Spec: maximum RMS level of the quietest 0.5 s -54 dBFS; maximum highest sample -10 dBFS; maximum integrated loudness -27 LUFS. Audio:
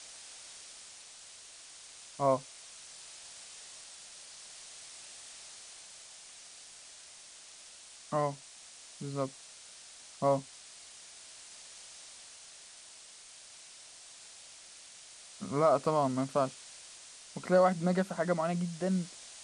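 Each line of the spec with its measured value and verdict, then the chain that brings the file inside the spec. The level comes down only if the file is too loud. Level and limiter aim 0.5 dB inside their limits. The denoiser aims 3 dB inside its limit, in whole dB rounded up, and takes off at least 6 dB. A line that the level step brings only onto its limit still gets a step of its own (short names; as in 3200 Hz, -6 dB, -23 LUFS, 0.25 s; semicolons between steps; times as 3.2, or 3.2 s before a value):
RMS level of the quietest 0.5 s -53 dBFS: fail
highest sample -14.5 dBFS: OK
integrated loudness -32.5 LUFS: OK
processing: denoiser 6 dB, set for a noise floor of -53 dBFS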